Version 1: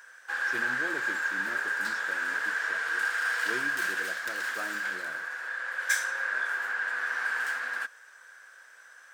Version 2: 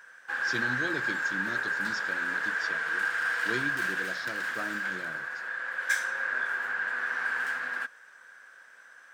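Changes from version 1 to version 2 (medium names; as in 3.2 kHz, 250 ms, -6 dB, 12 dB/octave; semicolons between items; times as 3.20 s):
speech: remove boxcar filter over 10 samples; master: add tone controls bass +14 dB, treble -6 dB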